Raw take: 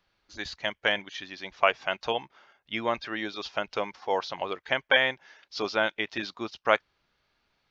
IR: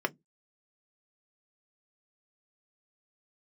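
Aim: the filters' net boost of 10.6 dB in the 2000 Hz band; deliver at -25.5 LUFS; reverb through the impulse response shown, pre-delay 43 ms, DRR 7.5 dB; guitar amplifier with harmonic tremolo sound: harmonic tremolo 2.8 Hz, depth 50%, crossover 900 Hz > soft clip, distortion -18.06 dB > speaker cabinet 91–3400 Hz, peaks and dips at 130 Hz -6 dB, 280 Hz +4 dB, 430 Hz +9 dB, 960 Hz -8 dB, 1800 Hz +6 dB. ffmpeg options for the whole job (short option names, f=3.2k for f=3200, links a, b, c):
-filter_complex "[0:a]equalizer=f=2k:t=o:g=9,asplit=2[a][b];[1:a]atrim=start_sample=2205,adelay=43[c];[b][c]afir=irnorm=-1:irlink=0,volume=-15dB[d];[a][d]amix=inputs=2:normalize=0,acrossover=split=900[e][f];[e]aeval=exprs='val(0)*(1-0.5/2+0.5/2*cos(2*PI*2.8*n/s))':c=same[g];[f]aeval=exprs='val(0)*(1-0.5/2-0.5/2*cos(2*PI*2.8*n/s))':c=same[h];[g][h]amix=inputs=2:normalize=0,asoftclip=threshold=-8.5dB,highpass=91,equalizer=f=130:t=q:w=4:g=-6,equalizer=f=280:t=q:w=4:g=4,equalizer=f=430:t=q:w=4:g=9,equalizer=f=960:t=q:w=4:g=-8,equalizer=f=1.8k:t=q:w=4:g=6,lowpass=f=3.4k:w=0.5412,lowpass=f=3.4k:w=1.3066,volume=-1dB"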